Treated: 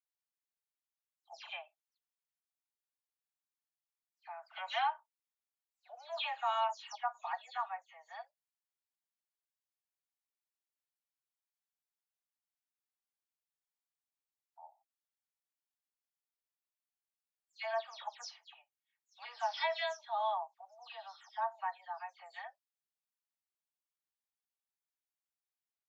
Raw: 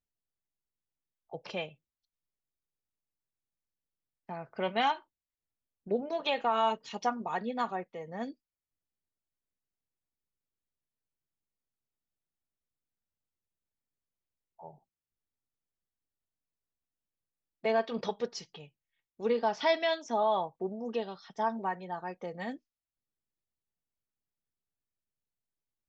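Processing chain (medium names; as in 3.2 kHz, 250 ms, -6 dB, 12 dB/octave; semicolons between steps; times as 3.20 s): delay that grows with frequency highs early, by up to 163 ms; steep high-pass 680 Hz 72 dB/octave; trim -4 dB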